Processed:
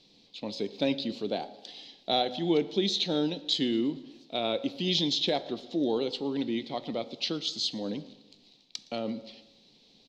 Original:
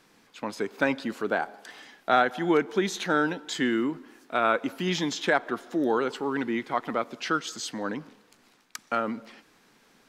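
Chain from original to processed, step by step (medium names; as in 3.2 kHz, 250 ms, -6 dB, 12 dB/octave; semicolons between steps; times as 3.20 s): FFT filter 130 Hz 0 dB, 690 Hz -4 dB, 1.5 kHz -25 dB, 2.2 kHz -8 dB, 4 kHz +11 dB, 10 kHz -21 dB; feedback delay 114 ms, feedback 58%, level -23 dB; on a send at -13.5 dB: reverberation RT60 0.70 s, pre-delay 3 ms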